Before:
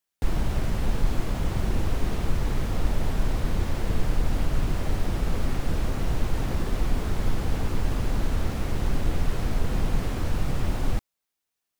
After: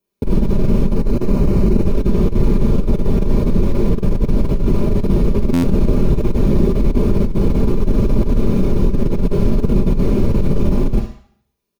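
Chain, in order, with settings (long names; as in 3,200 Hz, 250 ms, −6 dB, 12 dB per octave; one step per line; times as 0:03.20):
comb filter 5 ms, depth 57%
flutter between parallel walls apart 11.8 metres, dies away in 0.35 s
in parallel at −4 dB: soft clipping −24.5 dBFS, distortion −7 dB
0:00.88–0:01.87: on the sum: notch filter 3,400 Hz, Q 6.9
convolution reverb RT60 0.60 s, pre-delay 3 ms, DRR 8 dB
compressor whose output falls as the input rises −8 dBFS, ratio −0.5
buffer that repeats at 0:05.53, samples 512, times 8
level −3 dB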